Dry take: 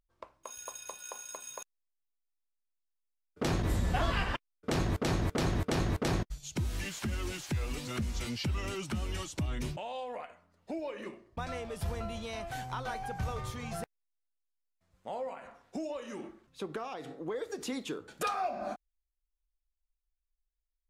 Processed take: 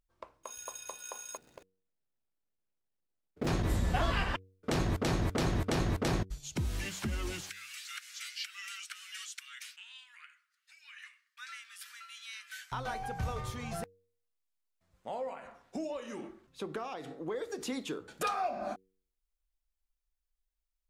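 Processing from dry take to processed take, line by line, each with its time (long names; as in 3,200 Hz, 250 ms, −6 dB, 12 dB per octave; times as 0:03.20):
0:01.37–0:03.47: running median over 41 samples
0:07.50–0:12.72: Butterworth high-pass 1,400 Hz 48 dB per octave
whole clip: hum removal 94.37 Hz, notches 5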